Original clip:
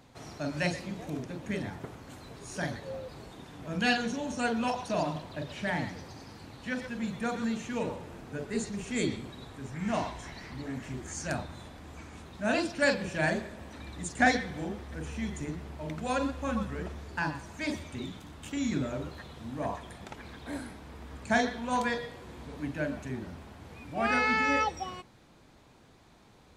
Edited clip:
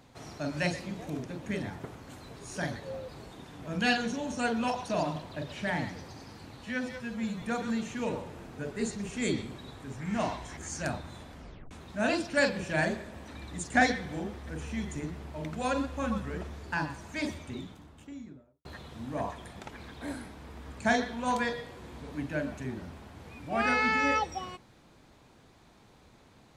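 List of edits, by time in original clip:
0:06.64–0:07.16: time-stretch 1.5×
0:10.31–0:11.02: remove
0:11.79: tape stop 0.37 s
0:17.67–0:19.10: fade out and dull

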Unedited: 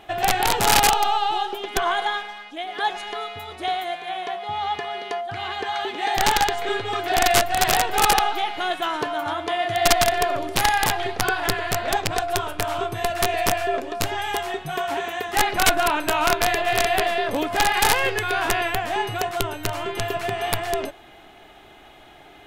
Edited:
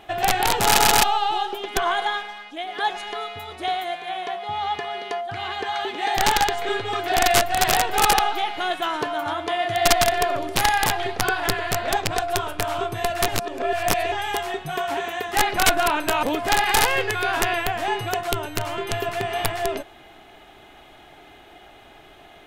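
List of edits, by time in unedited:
0:00.64: stutter in place 0.13 s, 3 plays
0:13.28–0:14.12: reverse
0:16.23–0:17.31: remove

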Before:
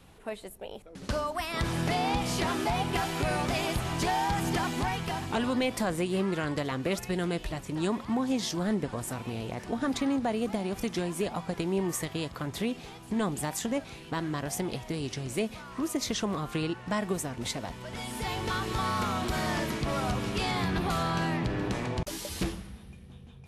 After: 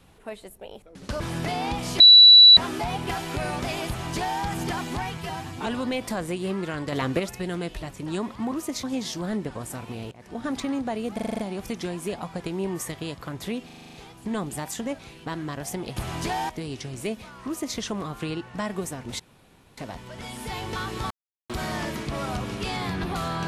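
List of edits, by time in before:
0:01.20–0:01.63: remove
0:02.43: insert tone 3,940 Hz −7 dBFS 0.57 s
0:03.74–0:04.27: duplicate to 0:14.82
0:05.03–0:05.36: time-stretch 1.5×
0:06.62–0:06.89: clip gain +6 dB
0:09.49–0:09.83: fade in, from −22 dB
0:10.52: stutter 0.04 s, 7 plays
0:12.79: stutter 0.04 s, 8 plays
0:15.78–0:16.10: duplicate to 0:08.21
0:17.52: splice in room tone 0.58 s
0:18.85–0:19.24: silence

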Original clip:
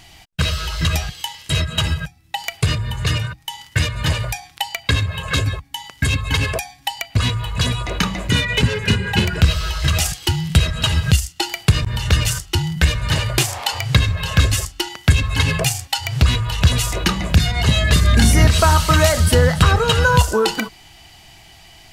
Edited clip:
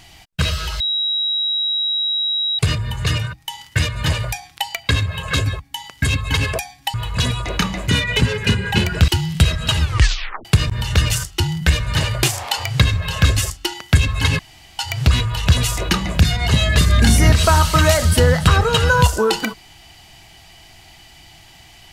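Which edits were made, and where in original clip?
0:00.80–0:02.59: beep over 3,850 Hz −17 dBFS
0:06.94–0:07.35: remove
0:09.49–0:10.23: remove
0:10.95: tape stop 0.65 s
0:15.54–0:15.94: fill with room tone

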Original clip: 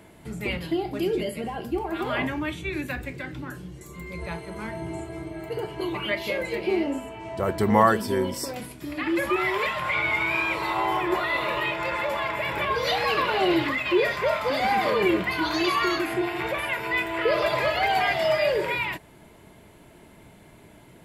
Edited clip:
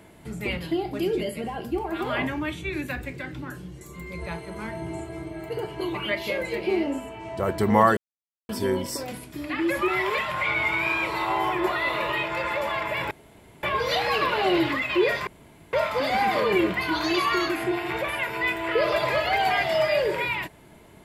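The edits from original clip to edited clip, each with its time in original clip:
0:07.97: splice in silence 0.52 s
0:12.59: splice in room tone 0.52 s
0:14.23: splice in room tone 0.46 s

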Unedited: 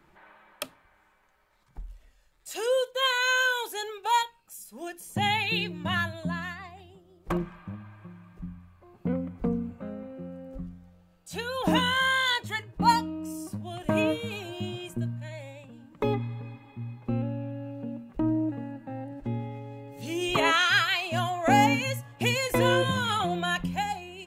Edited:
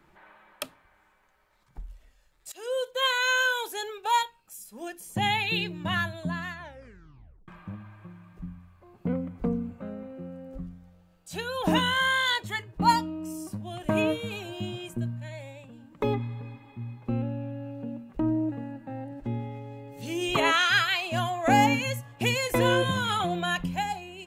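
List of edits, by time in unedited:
0:02.52–0:02.93: fade in, from −20.5 dB
0:06.51: tape stop 0.97 s

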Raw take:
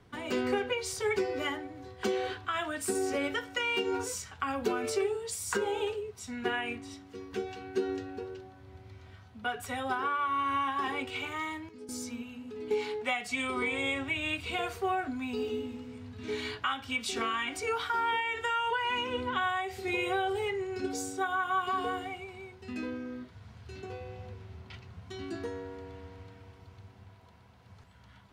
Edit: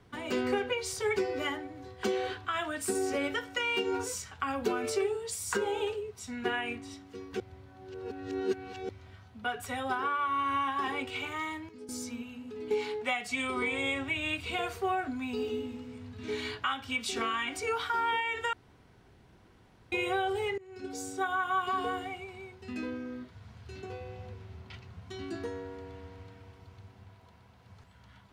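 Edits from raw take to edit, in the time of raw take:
0:07.40–0:08.89: reverse
0:18.53–0:19.92: fill with room tone
0:20.58–0:21.22: fade in, from −23 dB

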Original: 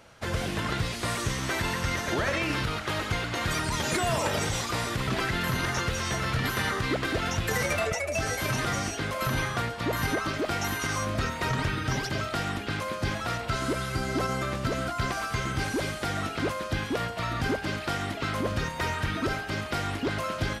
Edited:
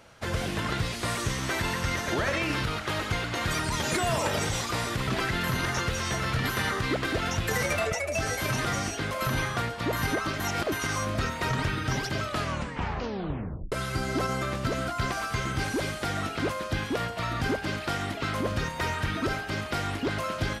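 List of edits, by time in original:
0:10.40–0:10.72: reverse
0:12.23: tape stop 1.49 s

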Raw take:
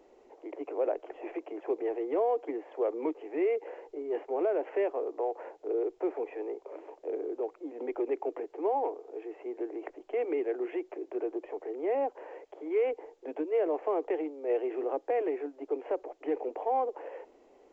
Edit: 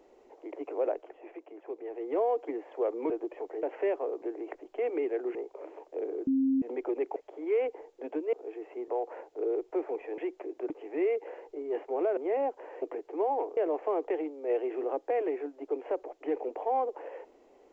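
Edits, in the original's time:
0:00.89–0:02.17: duck −8 dB, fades 0.28 s
0:03.10–0:04.57: swap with 0:11.22–0:11.75
0:05.16–0:06.46: swap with 0:09.57–0:10.70
0:07.38–0:07.73: beep over 267 Hz −23 dBFS
0:08.27–0:09.02: swap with 0:12.40–0:13.57

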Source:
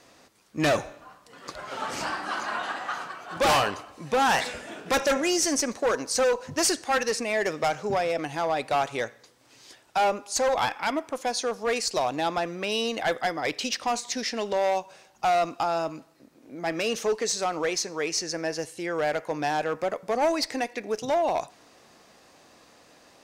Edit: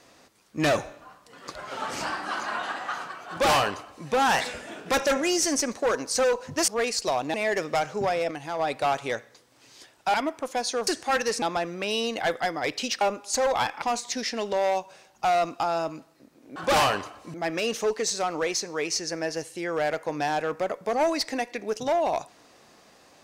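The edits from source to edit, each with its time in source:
0:03.29–0:04.07: duplicate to 0:16.56
0:06.68–0:07.23: swap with 0:11.57–0:12.23
0:08.20–0:08.48: clip gain −4 dB
0:10.03–0:10.84: move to 0:13.82

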